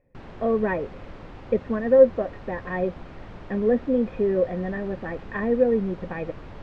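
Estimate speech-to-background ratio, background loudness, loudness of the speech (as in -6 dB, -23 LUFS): 18.5 dB, -43.0 LUFS, -24.5 LUFS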